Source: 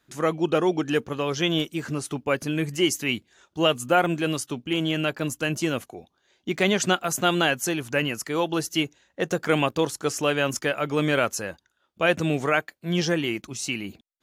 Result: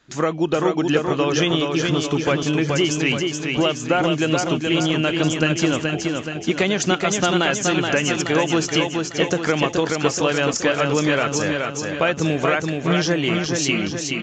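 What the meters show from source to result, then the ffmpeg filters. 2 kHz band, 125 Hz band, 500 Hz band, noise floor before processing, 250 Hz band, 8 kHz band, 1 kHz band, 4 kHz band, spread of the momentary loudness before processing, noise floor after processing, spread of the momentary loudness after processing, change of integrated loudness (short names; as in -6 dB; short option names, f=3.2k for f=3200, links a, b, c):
+4.5 dB, +6.5 dB, +4.5 dB, -73 dBFS, +6.0 dB, +6.0 dB, +4.0 dB, +5.0 dB, 8 LU, -31 dBFS, 4 LU, +5.0 dB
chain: -af "acompressor=threshold=-25dB:ratio=6,aecho=1:1:425|850|1275|1700|2125|2550|2975:0.631|0.334|0.177|0.0939|0.0498|0.0264|0.014,volume=8.5dB" -ar 16000 -c:a libvorbis -b:a 64k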